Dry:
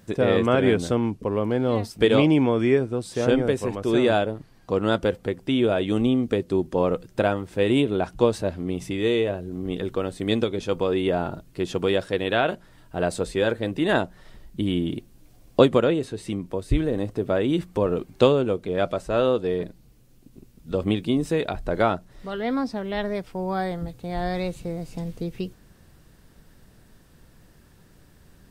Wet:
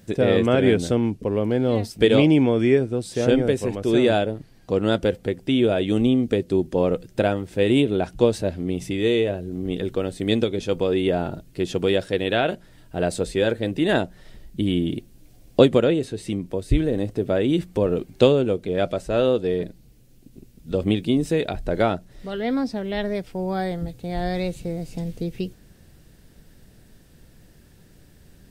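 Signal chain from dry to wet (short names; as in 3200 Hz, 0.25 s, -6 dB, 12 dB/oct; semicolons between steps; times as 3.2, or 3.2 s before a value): bell 1100 Hz -8 dB 0.84 oct; gain +2.5 dB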